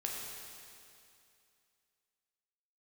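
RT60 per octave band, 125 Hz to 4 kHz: 2.5 s, 2.5 s, 2.5 s, 2.5 s, 2.5 s, 2.5 s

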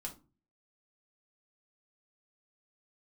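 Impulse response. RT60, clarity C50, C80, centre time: 0.35 s, 13.5 dB, 20.5 dB, 12 ms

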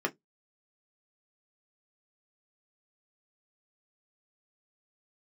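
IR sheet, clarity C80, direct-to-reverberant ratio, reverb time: 38.0 dB, 2.0 dB, no single decay rate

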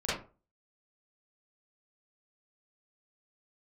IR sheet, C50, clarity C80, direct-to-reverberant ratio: 0.0 dB, 8.0 dB, -11.0 dB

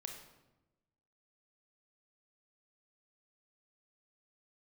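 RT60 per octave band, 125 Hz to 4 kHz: 1.4 s, 1.3 s, 1.1 s, 0.95 s, 0.80 s, 0.70 s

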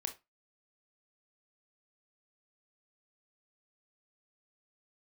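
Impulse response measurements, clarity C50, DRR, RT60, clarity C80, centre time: 13.5 dB, 5.5 dB, 0.20 s, 22.0 dB, 11 ms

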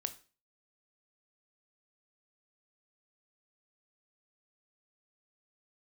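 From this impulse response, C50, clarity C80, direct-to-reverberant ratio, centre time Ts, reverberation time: 15.0 dB, 20.5 dB, 9.5 dB, 5 ms, 0.35 s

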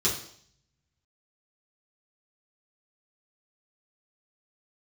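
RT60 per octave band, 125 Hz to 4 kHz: 1.2 s, 0.65 s, 0.60 s, 0.60 s, 0.60 s, 0.70 s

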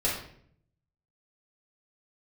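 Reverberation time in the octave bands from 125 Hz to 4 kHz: 1.1 s, 0.85 s, 0.70 s, 0.55 s, 0.55 s, 0.45 s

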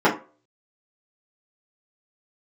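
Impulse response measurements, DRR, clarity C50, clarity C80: -9.5 dB, 11.0 dB, 16.5 dB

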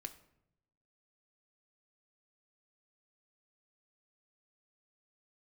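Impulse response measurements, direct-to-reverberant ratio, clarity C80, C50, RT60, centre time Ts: 6.0 dB, 17.0 dB, 13.5 dB, 0.80 s, 8 ms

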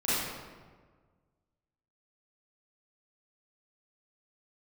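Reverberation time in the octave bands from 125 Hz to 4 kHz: 2.0 s, 1.7 s, 1.6 s, 1.4 s, 1.2 s, 0.90 s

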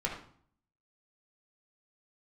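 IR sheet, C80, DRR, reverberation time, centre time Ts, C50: 8.5 dB, -2.5 dB, 0.55 s, 30 ms, 5.0 dB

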